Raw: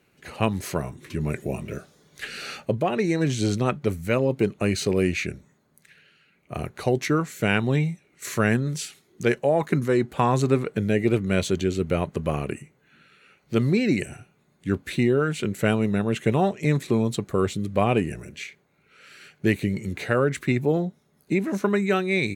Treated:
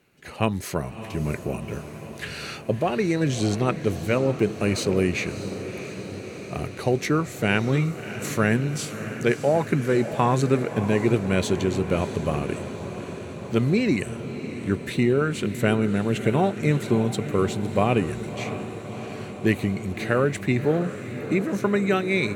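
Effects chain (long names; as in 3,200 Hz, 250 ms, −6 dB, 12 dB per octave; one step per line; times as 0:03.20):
feedback delay with all-pass diffusion 635 ms, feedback 71%, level −11.5 dB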